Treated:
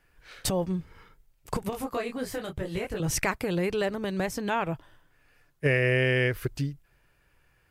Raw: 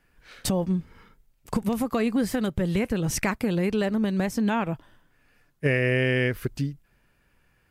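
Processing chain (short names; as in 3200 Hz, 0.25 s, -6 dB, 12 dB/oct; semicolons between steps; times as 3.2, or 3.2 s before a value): bell 220 Hz -12 dB 0.42 oct; 1.7–3 detuned doubles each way 26 cents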